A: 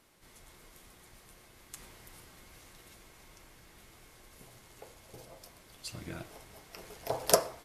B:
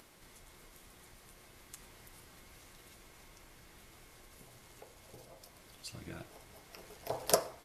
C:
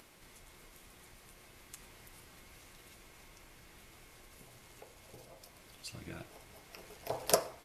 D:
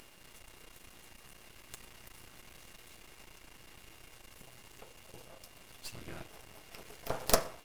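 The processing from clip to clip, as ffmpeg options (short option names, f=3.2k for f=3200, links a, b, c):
-af "acompressor=mode=upward:threshold=-47dB:ratio=2.5,volume=-4dB"
-af "equalizer=f=2.5k:w=3.1:g=3"
-af "aeval=exprs='val(0)+0.000562*sin(2*PI*2800*n/s)':c=same,aeval=exprs='max(val(0),0)':c=same,volume=5.5dB"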